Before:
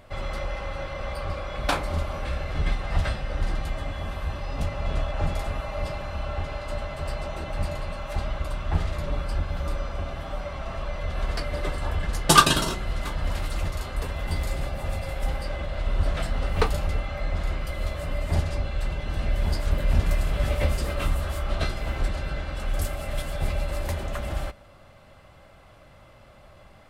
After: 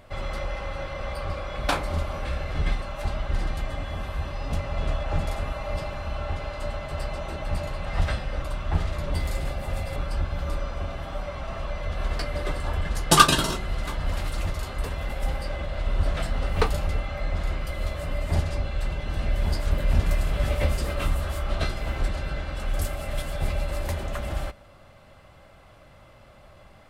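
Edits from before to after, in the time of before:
2.82–3.39 s: swap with 7.93–8.42 s
14.30–15.12 s: move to 9.14 s

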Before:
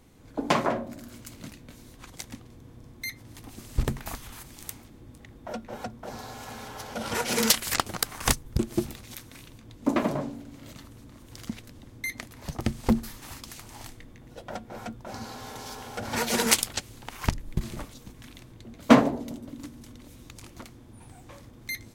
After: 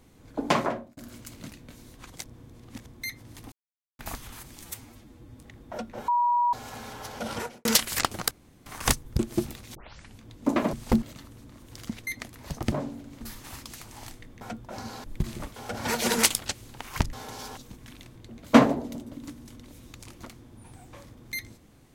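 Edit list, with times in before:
0.60–0.97 s: fade out
2.24–2.86 s: reverse
3.52–3.99 s: mute
4.62–5.12 s: stretch 1.5×
5.83–6.28 s: bleep 963 Hz -20 dBFS
7.02–7.40 s: studio fade out
8.06 s: insert room tone 0.35 s
9.15 s: tape start 0.45 s
10.13–10.62 s: swap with 12.70–12.99 s
11.67–12.05 s: delete
14.19–14.77 s: delete
15.40–15.84 s: swap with 17.41–17.93 s

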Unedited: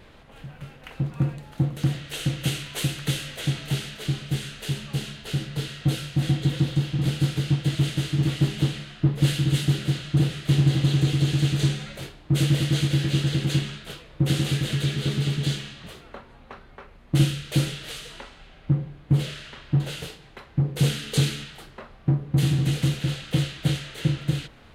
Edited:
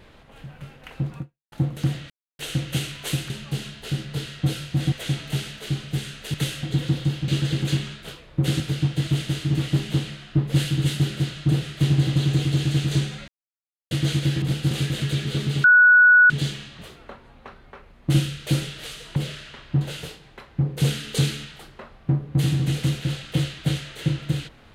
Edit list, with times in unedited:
1.18–1.52 s: fade out exponential
2.10 s: insert silence 0.29 s
3.01–3.30 s: swap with 4.72–6.34 s
6.99–7.28 s: swap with 13.10–14.42 s
11.96–12.59 s: mute
15.35 s: add tone 1.47 kHz -9.5 dBFS 0.66 s
18.21–19.15 s: delete

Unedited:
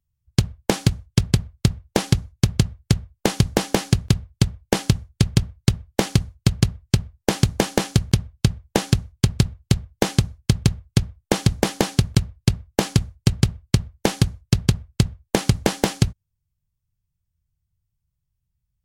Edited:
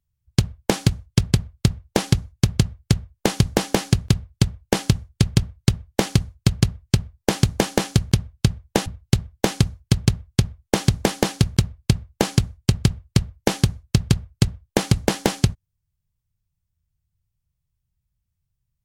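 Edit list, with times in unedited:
8.86–9.44 s: delete

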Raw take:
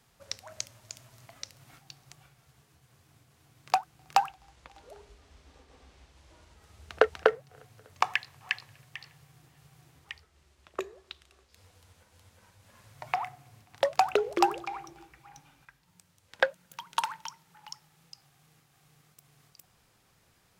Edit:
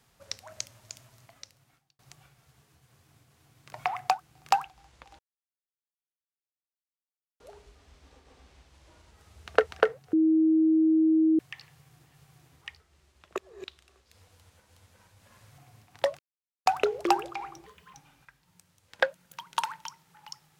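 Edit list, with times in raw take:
0.92–1.99 s: fade out
4.83 s: insert silence 2.21 s
7.56–8.82 s: bleep 318 Hz -18.5 dBFS
10.81–11.07 s: reverse
13.01–13.37 s: move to 3.73 s
13.98 s: insert silence 0.47 s
14.98–15.34 s: speed 129%

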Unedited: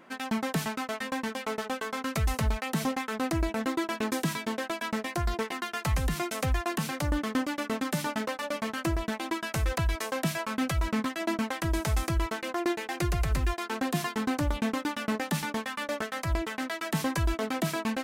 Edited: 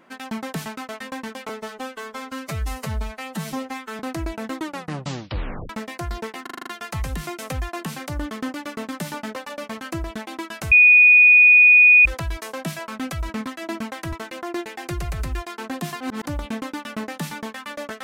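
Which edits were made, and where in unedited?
1.49–3.16 s: stretch 1.5×
3.74 s: tape stop 1.12 s
5.59 s: stutter 0.04 s, 7 plays
9.64 s: add tone 2.47 kHz -8 dBFS 1.34 s
11.71–12.24 s: delete
14.12–14.37 s: reverse

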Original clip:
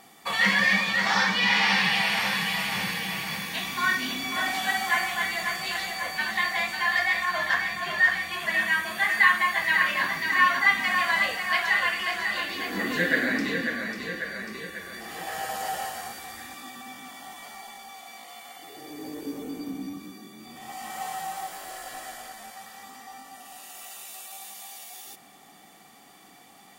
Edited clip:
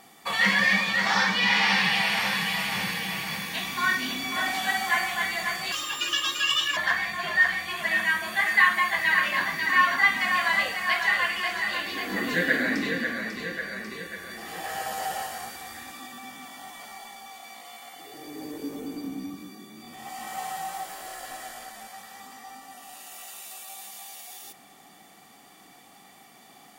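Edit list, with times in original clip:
5.72–7.40 s: speed 160%

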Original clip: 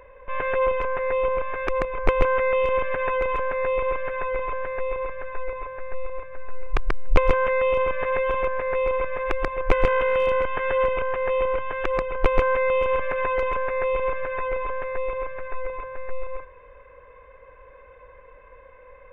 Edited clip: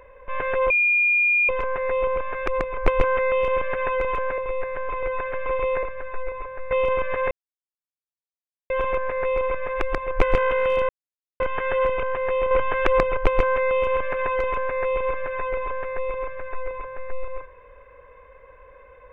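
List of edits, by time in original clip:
0.70 s: add tone 2.42 kHz -16 dBFS 0.79 s
3.59–5.04 s: reverse
5.92–7.60 s: delete
8.20 s: insert silence 1.39 s
10.39 s: insert silence 0.51 s
11.50–12.16 s: gain +5.5 dB

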